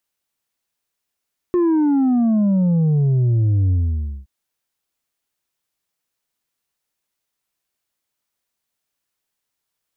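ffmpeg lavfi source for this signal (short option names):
-f lavfi -i "aevalsrc='0.2*clip((2.72-t)/0.55,0,1)*tanh(1.58*sin(2*PI*360*2.72/log(65/360)*(exp(log(65/360)*t/2.72)-1)))/tanh(1.58)':d=2.72:s=44100"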